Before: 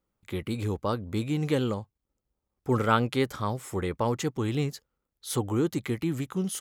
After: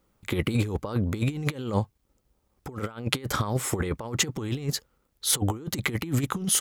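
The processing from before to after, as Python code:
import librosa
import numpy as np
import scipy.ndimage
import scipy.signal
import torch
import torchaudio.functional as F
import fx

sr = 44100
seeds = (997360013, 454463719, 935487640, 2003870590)

y = fx.over_compress(x, sr, threshold_db=-33.0, ratio=-0.5)
y = y * 10.0 ** (6.5 / 20.0)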